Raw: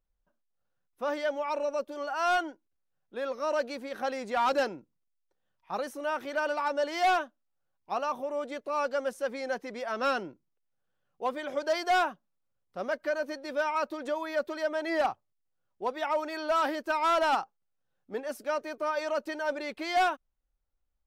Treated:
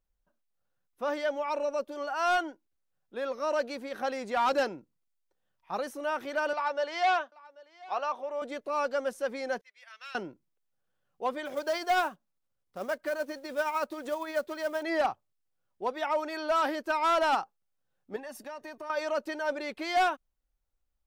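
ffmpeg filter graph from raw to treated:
ffmpeg -i in.wav -filter_complex "[0:a]asettb=1/sr,asplit=3[link_01][link_02][link_03];[link_01]atrim=end=6.534[link_04];[link_02]atrim=start=6.53:end=8.42,asetpts=PTS-STARTPTS,afade=type=in:duration=0.004:curve=qsin,afade=type=out:start_time=1.886:duration=0.004:curve=qsin,highpass=490,lowpass=5300,aecho=1:1:788:0.075,atrim=end_sample=83349[link_05];[link_03]atrim=start=8.416[link_06];[link_04][link_05]acrossfade=duration=0.004:curve1=hsin:curve2=qsin[link_07];[link_07][link_06]acrossfade=duration=0.004:curve1=qsin:curve2=hsin,asettb=1/sr,asplit=3[link_08][link_09][link_10];[link_08]atrim=end=9.614[link_11];[link_09]atrim=start=9.61:end=10.15,asetpts=PTS-STARTPTS,afade=type=in:duration=0.004:curve=qsin,afade=type=out:start_time=0.536:duration=0.004:curve=qsin,agate=range=-33dB:threshold=-29dB:ratio=3:release=100:detection=peak,highpass=frequency=2200:width_type=q:width=1.6,acompressor=threshold=-50dB:ratio=2:attack=3.2:release=140:knee=1:detection=peak[link_12];[link_10]atrim=start=10.146[link_13];[link_11][link_12]acrossfade=duration=0.004:curve1=hsin:curve2=qsin[link_14];[link_14][link_13]acrossfade=duration=0.004:curve1=qsin:curve2=hsin,asettb=1/sr,asplit=3[link_15][link_16][link_17];[link_15]atrim=end=11.454[link_18];[link_16]atrim=start=11.45:end=14.83,asetpts=PTS-STARTPTS,afade=type=in:duration=0.004:curve=qsin,afade=type=out:start_time=3.376:duration=0.004:curve=qsin,acrusher=bits=5:mode=log:mix=0:aa=0.000001,tremolo=f=13:d=0.34[link_19];[link_17]atrim=start=14.826[link_20];[link_18][link_19]acrossfade=duration=0.004:curve1=hsin:curve2=qsin[link_21];[link_21][link_20]acrossfade=duration=0.004:curve1=qsin:curve2=hsin,asettb=1/sr,asplit=3[link_22][link_23][link_24];[link_22]atrim=end=18.164[link_25];[link_23]atrim=start=18.16:end=18.9,asetpts=PTS-STARTPTS,afade=type=in:duration=0.004:curve=qsin,afade=type=out:start_time=0.736:duration=0.004:curve=qsin,aecho=1:1:1.1:0.54,atrim=end_sample=32634,acompressor=threshold=-38dB:ratio=6:attack=3.2:release=140:knee=1:detection=peak[link_26];[link_24]atrim=start=18.896[link_27];[link_25][link_26]acrossfade=duration=0.004:curve1=hsin:curve2=qsin[link_28];[link_28][link_27]acrossfade=duration=0.004:curve1=qsin:curve2=hsin" out.wav

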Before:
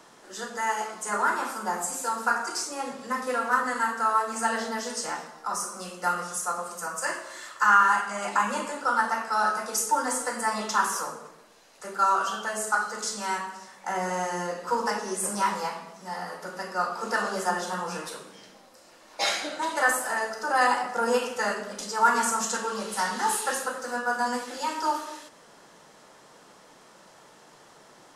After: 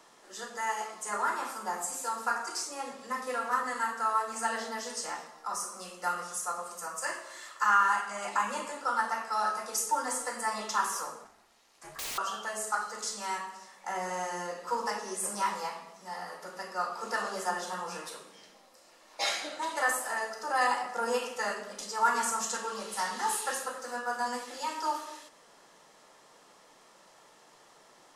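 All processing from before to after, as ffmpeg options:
ffmpeg -i in.wav -filter_complex "[0:a]asettb=1/sr,asplit=3[link_01][link_02][link_03];[link_01]atrim=end=11.244[link_04];[link_02]atrim=start=11.24:end=12.18,asetpts=PTS-STARTPTS,afade=type=in:duration=0.004:curve=qsin,afade=type=out:start_time=0.936:duration=0.004:curve=qsin,lowshelf=frequency=260:gain=-6,aeval=exprs='(mod(17.8*val(0)+1,2)-1)/17.8':channel_layout=same,aeval=exprs='val(0)*sin(2*PI*240*n/s)':channel_layout=same[link_05];[link_03]atrim=start=12.176[link_06];[link_04][link_05]acrossfade=duration=0.004:curve1=hsin:curve2=qsin[link_07];[link_07][link_06]acrossfade=duration=0.004:curve1=qsin:curve2=hsin,equalizer=frequency=110:width=0.36:gain=-7,bandreject=frequency=1500:width=13,volume=-4dB" out.wav

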